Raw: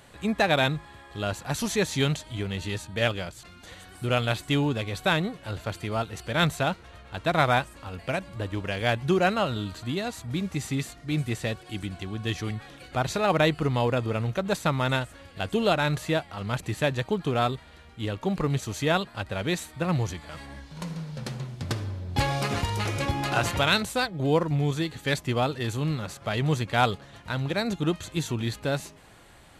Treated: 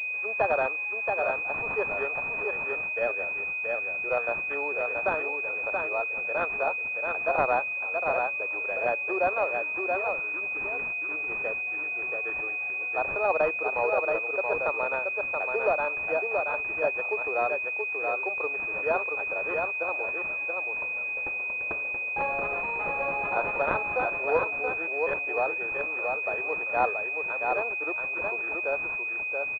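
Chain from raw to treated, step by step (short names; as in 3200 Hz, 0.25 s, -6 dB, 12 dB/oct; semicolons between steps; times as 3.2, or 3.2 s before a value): steep high-pass 430 Hz 36 dB/oct; echo 0.678 s -4 dB; pulse-width modulation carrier 2500 Hz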